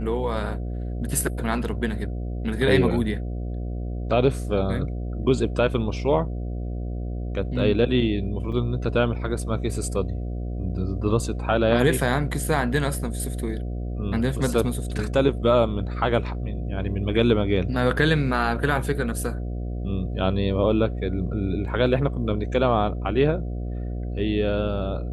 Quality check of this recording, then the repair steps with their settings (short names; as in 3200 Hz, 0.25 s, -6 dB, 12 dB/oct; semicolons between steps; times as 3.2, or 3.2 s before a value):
buzz 60 Hz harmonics 12 -29 dBFS
8.52–8.53 gap 5.4 ms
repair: de-hum 60 Hz, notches 12; interpolate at 8.52, 5.4 ms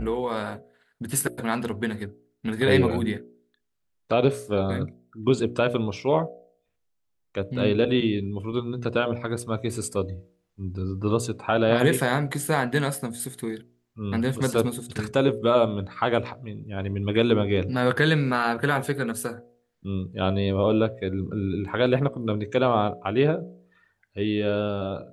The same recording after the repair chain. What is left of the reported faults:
none